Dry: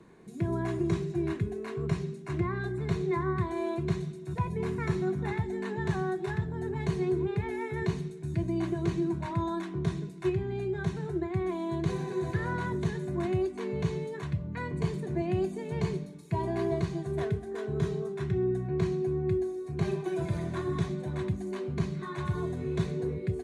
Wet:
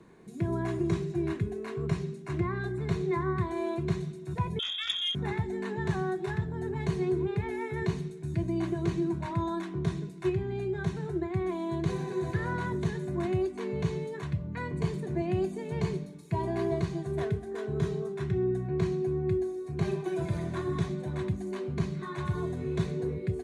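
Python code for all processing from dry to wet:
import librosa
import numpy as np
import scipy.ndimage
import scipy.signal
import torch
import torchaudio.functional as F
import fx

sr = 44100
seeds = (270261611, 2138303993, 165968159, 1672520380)

y = fx.chain(x, sr, fx.low_shelf(hz=230.0, db=-5.0),
    fx.freq_invert(carrier_hz=3600),
    fx.transformer_sat(knee_hz=2200.0), at=(4.59, 5.15))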